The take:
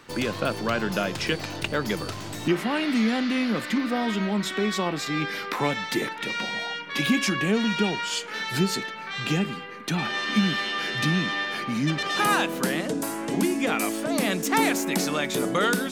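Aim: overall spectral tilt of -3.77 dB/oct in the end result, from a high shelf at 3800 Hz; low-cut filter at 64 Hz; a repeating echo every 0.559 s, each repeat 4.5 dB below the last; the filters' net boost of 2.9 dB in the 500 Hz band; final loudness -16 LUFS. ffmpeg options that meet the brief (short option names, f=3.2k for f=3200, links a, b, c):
-af "highpass=64,equalizer=f=500:t=o:g=3.5,highshelf=f=3.8k:g=9,aecho=1:1:559|1118|1677|2236|2795|3354|3913|4472|5031:0.596|0.357|0.214|0.129|0.0772|0.0463|0.0278|0.0167|0.01,volume=5.5dB"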